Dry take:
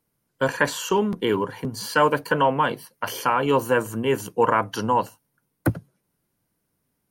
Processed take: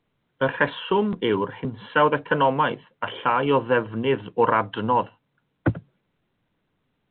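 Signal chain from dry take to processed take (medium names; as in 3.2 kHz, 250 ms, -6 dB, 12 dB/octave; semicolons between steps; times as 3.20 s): µ-law 64 kbps 8 kHz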